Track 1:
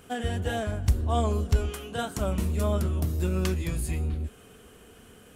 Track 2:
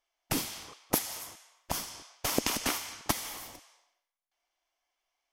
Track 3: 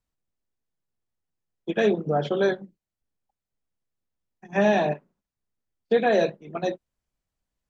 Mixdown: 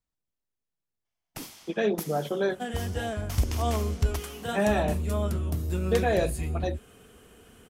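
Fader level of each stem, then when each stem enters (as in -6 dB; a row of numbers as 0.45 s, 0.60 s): -2.0 dB, -9.0 dB, -4.5 dB; 2.50 s, 1.05 s, 0.00 s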